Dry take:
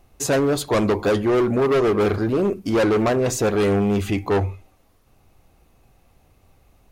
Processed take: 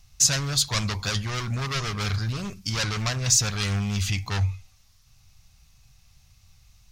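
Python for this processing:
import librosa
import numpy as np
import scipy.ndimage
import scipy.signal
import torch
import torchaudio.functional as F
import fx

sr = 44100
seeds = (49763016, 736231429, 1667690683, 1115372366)

y = fx.curve_eq(x, sr, hz=(140.0, 350.0, 1100.0, 2800.0, 5600.0, 10000.0), db=(0, -26, -8, 1, 12, -1))
y = y * librosa.db_to_amplitude(1.0)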